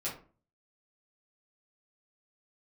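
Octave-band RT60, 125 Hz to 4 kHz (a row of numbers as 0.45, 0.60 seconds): 0.60, 0.50, 0.40, 0.35, 0.30, 0.25 seconds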